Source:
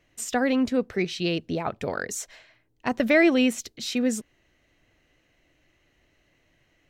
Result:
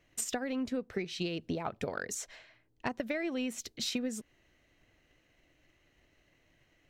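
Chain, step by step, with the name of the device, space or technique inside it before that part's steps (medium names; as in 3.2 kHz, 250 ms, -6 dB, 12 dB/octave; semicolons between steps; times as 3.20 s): 2.14–2.93 s: treble shelf 10 kHz -8 dB; drum-bus smash (transient shaper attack +7 dB, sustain +1 dB; compression 10:1, threshold -27 dBFS, peak gain reduction 16 dB; saturation -15.5 dBFS, distortion -25 dB); trim -3.5 dB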